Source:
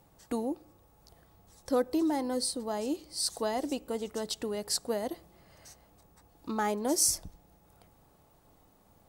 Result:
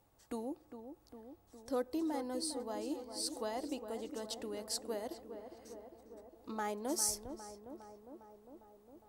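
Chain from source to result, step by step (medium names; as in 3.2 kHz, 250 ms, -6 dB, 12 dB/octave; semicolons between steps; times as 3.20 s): peaking EQ 170 Hz -14.5 dB 0.23 oct; on a send: tape echo 406 ms, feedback 79%, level -8 dB, low-pass 1.4 kHz; on the sum: trim -8 dB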